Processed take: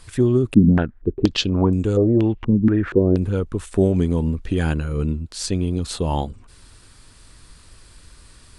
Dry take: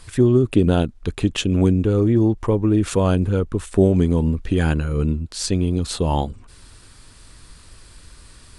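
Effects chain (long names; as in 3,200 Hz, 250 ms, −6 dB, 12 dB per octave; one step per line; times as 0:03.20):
0:00.54–0:03.16: low-pass on a step sequencer 4.2 Hz 220–7,800 Hz
level −2 dB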